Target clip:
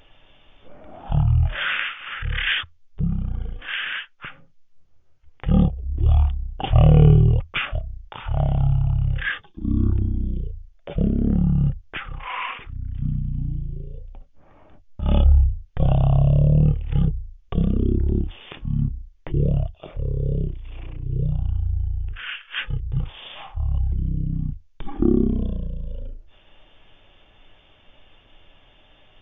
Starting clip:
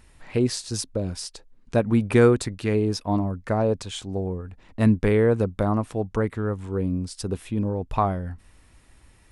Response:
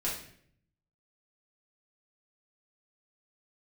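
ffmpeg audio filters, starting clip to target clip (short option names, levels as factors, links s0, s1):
-af "highshelf=f=7100:g=8.5,asetrate=14068,aresample=44100,volume=1.33"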